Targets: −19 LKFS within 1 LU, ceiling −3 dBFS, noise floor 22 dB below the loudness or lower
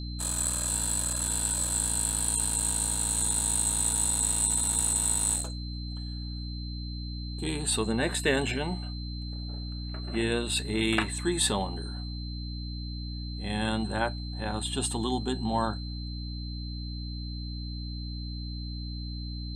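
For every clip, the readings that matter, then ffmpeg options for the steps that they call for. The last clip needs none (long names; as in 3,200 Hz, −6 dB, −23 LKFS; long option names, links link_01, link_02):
mains hum 60 Hz; hum harmonics up to 300 Hz; level of the hum −34 dBFS; interfering tone 4,100 Hz; level of the tone −43 dBFS; integrated loudness −29.0 LKFS; sample peak −11.0 dBFS; target loudness −19.0 LKFS
→ -af "bandreject=frequency=60:width_type=h:width=4,bandreject=frequency=120:width_type=h:width=4,bandreject=frequency=180:width_type=h:width=4,bandreject=frequency=240:width_type=h:width=4,bandreject=frequency=300:width_type=h:width=4"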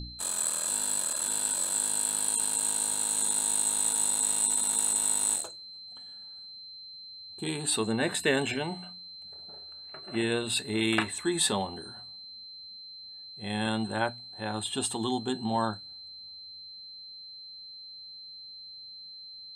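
mains hum none found; interfering tone 4,100 Hz; level of the tone −43 dBFS
→ -af "bandreject=frequency=4100:width=30"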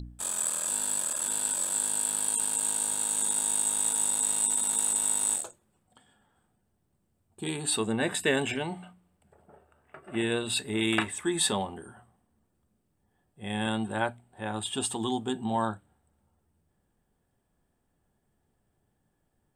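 interfering tone none found; integrated loudness −27.5 LKFS; sample peak −12.0 dBFS; target loudness −19.0 LKFS
→ -af "volume=8.5dB"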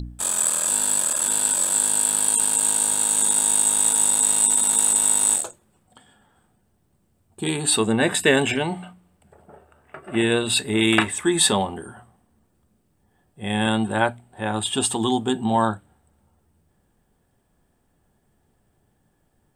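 integrated loudness −19.0 LKFS; sample peak −3.5 dBFS; background noise floor −67 dBFS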